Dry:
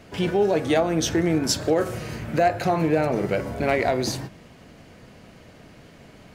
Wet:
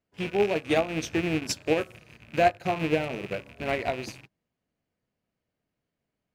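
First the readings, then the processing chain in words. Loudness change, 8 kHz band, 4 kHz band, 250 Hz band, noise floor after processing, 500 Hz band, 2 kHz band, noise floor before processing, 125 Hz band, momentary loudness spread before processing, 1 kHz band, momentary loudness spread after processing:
−4.5 dB, −9.0 dB, −5.5 dB, −6.5 dB, −85 dBFS, −5.0 dB, −2.0 dB, −49 dBFS, −8.0 dB, 7 LU, −4.0 dB, 10 LU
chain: loose part that buzzes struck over −32 dBFS, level −17 dBFS
expander for the loud parts 2.5 to 1, over −40 dBFS

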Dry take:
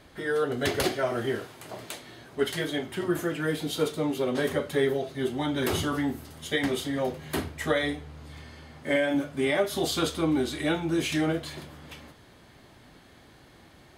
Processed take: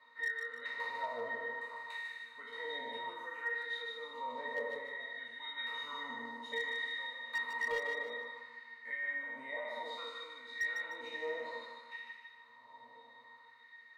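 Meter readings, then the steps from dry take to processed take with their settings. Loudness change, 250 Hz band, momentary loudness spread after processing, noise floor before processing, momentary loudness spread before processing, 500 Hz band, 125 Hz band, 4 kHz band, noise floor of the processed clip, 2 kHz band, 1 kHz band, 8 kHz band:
−11.5 dB, −29.5 dB, 17 LU, −55 dBFS, 15 LU, −16.5 dB, below −35 dB, −10.0 dB, −60 dBFS, −3.0 dB, −7.0 dB, below −20 dB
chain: peak hold with a decay on every bin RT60 1.23 s
dynamic equaliser 2,100 Hz, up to +4 dB, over −40 dBFS, Q 2.6
downward compressor 6 to 1, threshold −30 dBFS, peak gain reduction 12.5 dB
auto-filter high-pass sine 0.6 Hz 740–1,700 Hz
resonances in every octave A#, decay 0.16 s
hard clipping −39.5 dBFS, distortion −23 dB
feedback echo with a high-pass in the loop 151 ms, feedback 38%, high-pass 420 Hz, level −5 dB
level +9.5 dB

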